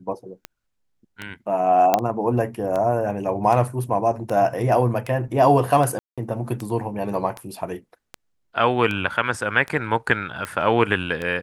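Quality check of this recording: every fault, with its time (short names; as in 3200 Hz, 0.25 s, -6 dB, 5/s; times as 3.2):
tick 78 rpm -15 dBFS
1.94 pop -3 dBFS
5.99–6.18 gap 0.186 s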